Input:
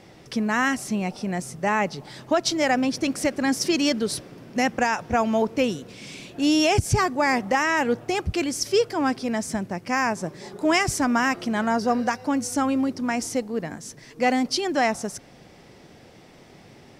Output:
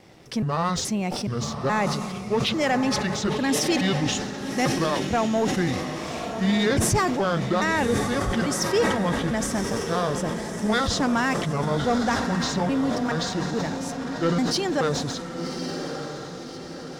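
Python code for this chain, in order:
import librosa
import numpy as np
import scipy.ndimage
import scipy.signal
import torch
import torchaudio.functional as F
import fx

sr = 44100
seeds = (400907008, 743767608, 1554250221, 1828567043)

y = fx.pitch_trill(x, sr, semitones=-7.0, every_ms=423)
y = fx.leveller(y, sr, passes=1)
y = fx.vibrato(y, sr, rate_hz=1.5, depth_cents=9.9)
y = fx.echo_diffused(y, sr, ms=1153, feedback_pct=50, wet_db=-7.0)
y = fx.sustainer(y, sr, db_per_s=38.0)
y = y * librosa.db_to_amplitude(-4.0)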